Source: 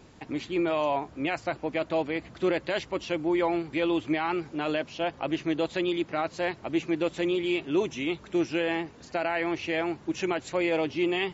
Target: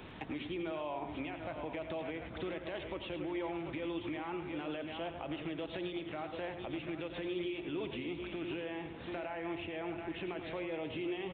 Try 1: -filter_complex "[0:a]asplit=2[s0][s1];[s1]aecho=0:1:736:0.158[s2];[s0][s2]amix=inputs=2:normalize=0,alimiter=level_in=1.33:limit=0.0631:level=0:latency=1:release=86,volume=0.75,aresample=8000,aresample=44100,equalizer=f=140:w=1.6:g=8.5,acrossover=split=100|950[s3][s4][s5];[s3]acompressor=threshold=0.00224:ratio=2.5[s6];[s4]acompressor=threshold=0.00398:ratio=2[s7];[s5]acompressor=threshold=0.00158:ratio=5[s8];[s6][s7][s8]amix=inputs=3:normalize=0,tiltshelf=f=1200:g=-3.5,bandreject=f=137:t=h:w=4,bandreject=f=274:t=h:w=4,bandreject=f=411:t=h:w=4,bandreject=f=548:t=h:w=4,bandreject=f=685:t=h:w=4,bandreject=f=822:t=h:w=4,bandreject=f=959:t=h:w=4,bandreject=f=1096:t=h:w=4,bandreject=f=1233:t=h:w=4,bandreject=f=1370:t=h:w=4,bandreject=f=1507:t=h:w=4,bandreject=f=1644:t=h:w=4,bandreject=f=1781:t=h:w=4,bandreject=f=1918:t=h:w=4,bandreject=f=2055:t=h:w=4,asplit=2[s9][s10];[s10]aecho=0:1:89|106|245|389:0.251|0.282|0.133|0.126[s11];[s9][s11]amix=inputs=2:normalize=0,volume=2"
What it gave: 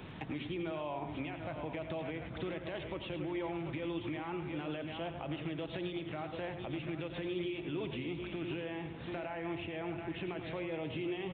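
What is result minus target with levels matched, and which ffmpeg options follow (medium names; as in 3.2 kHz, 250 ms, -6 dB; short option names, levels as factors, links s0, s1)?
125 Hz band +5.0 dB
-filter_complex "[0:a]asplit=2[s0][s1];[s1]aecho=0:1:736:0.158[s2];[s0][s2]amix=inputs=2:normalize=0,alimiter=level_in=1.33:limit=0.0631:level=0:latency=1:release=86,volume=0.75,aresample=8000,aresample=44100,acrossover=split=100|950[s3][s4][s5];[s3]acompressor=threshold=0.00224:ratio=2.5[s6];[s4]acompressor=threshold=0.00398:ratio=2[s7];[s5]acompressor=threshold=0.00158:ratio=5[s8];[s6][s7][s8]amix=inputs=3:normalize=0,tiltshelf=f=1200:g=-3.5,bandreject=f=137:t=h:w=4,bandreject=f=274:t=h:w=4,bandreject=f=411:t=h:w=4,bandreject=f=548:t=h:w=4,bandreject=f=685:t=h:w=4,bandreject=f=822:t=h:w=4,bandreject=f=959:t=h:w=4,bandreject=f=1096:t=h:w=4,bandreject=f=1233:t=h:w=4,bandreject=f=1370:t=h:w=4,bandreject=f=1507:t=h:w=4,bandreject=f=1644:t=h:w=4,bandreject=f=1781:t=h:w=4,bandreject=f=1918:t=h:w=4,bandreject=f=2055:t=h:w=4,asplit=2[s9][s10];[s10]aecho=0:1:89|106|245|389:0.251|0.282|0.133|0.126[s11];[s9][s11]amix=inputs=2:normalize=0,volume=2"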